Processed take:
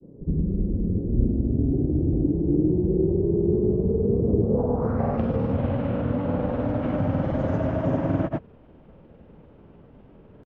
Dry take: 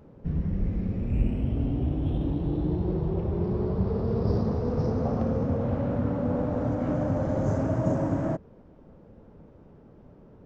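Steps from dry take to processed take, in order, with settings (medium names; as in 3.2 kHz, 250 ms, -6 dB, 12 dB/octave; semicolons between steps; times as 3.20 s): low-pass sweep 370 Hz -> 3 kHz, 4.37–5.24 s; granulator, pitch spread up and down by 0 st; trim +3 dB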